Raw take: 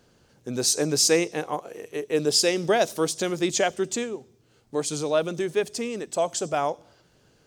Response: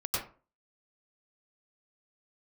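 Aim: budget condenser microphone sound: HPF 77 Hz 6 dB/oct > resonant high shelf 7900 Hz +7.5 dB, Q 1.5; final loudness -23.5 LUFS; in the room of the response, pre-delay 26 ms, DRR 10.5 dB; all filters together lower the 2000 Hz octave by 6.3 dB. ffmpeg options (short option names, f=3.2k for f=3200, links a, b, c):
-filter_complex "[0:a]equalizer=f=2k:t=o:g=-8,asplit=2[a][b];[1:a]atrim=start_sample=2205,adelay=26[c];[b][c]afir=irnorm=-1:irlink=0,volume=-17dB[d];[a][d]amix=inputs=2:normalize=0,highpass=f=77:p=1,highshelf=f=7.9k:t=q:w=1.5:g=7.5,volume=1dB"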